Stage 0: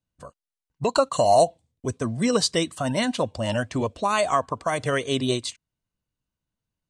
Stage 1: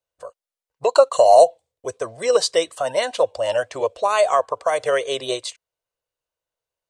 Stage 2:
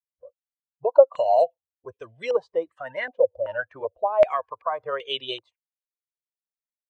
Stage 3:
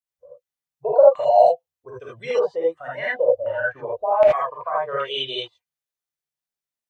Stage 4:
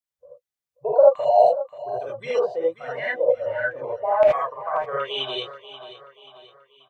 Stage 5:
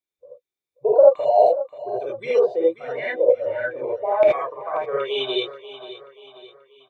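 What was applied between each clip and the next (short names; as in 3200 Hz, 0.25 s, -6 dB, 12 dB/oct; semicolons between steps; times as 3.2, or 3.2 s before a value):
resonant low shelf 340 Hz -13.5 dB, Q 3; gain +1 dB
per-bin expansion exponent 1.5; stepped low-pass 2.6 Hz 540–3000 Hz; gain -7 dB
non-linear reverb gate 0.1 s rising, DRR -6 dB; gain -3 dB
feedback echo 0.534 s, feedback 46%, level -14.5 dB; gain -1.5 dB
small resonant body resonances 360/2300/3600 Hz, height 14 dB, ringing for 20 ms; gain -3.5 dB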